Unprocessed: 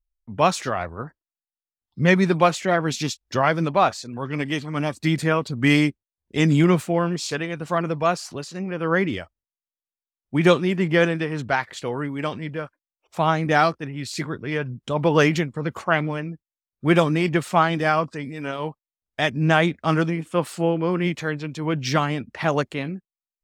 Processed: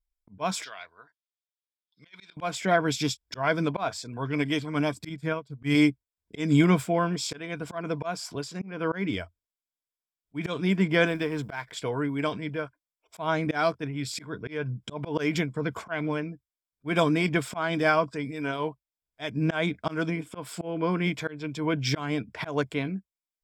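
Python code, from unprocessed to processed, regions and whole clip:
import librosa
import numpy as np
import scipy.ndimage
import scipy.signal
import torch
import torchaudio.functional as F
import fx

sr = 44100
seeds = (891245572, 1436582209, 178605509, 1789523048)

y = fx.chain(x, sr, fx.bandpass_q(hz=3700.0, q=2.1),
    fx.over_compress(threshold_db=-35.0, ratio=-0.5), at=(0.64, 2.37))
y = fx.chain(y, sr, fx.peak_eq(hz=140.0, db=6.5, octaves=0.62),
    fx.upward_expand(threshold_db=-29.0, expansion=2.5), at=(5.09, 5.75))
y = fx.chain(y, sr, fx.law_mismatch(coded='A'),
    fx.notch(hz=1400.0, q=27.0), at=(11.07, 11.72))
y = fx.ripple_eq(y, sr, per_octave=1.7, db=8)
y = fx.auto_swell(y, sr, attack_ms=202.0)
y = y * 10.0 ** (-3.0 / 20.0)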